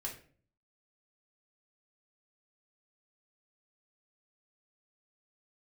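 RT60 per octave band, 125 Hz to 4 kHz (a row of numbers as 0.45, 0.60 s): 0.80, 0.65, 0.50, 0.40, 0.40, 0.35 s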